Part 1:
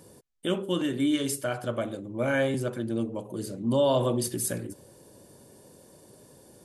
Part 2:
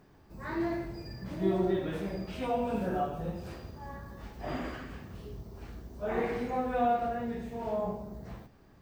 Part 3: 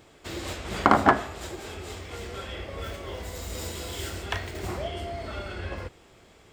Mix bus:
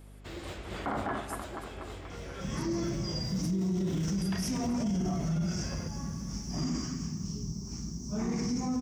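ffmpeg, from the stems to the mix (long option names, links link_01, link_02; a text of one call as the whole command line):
ffmpeg -i stem1.wav -i stem2.wav -i stem3.wav -filter_complex "[0:a]alimiter=level_in=1dB:limit=-24dB:level=0:latency=1,volume=-1dB,crystalizer=i=5.5:c=0,volume=-20dB[link_01];[1:a]firequalizer=gain_entry='entry(100,0);entry(160,13);entry(520,-14);entry(1100,-3);entry(1600,-11);entry(2300,-3);entry(3900,-15);entry(5600,14);entry(10000,-19)':delay=0.05:min_phase=1,aexciter=amount=6.4:drive=5.5:freq=3700,adelay=2100,volume=2.5dB[link_02];[2:a]aeval=exprs='val(0)+0.00708*(sin(2*PI*50*n/s)+sin(2*PI*2*50*n/s)/2+sin(2*PI*3*50*n/s)/3+sin(2*PI*4*50*n/s)/4+sin(2*PI*5*50*n/s)/5)':channel_layout=same,volume=-6.5dB,asplit=2[link_03][link_04];[link_04]volume=-14dB,aecho=0:1:241|482|723|964|1205|1446|1687|1928|2169|2410:1|0.6|0.36|0.216|0.13|0.0778|0.0467|0.028|0.0168|0.0101[link_05];[link_01][link_02][link_03][link_05]amix=inputs=4:normalize=0,highshelf=frequency=4700:gain=-7.5,alimiter=level_in=0.5dB:limit=-24dB:level=0:latency=1:release=15,volume=-0.5dB" out.wav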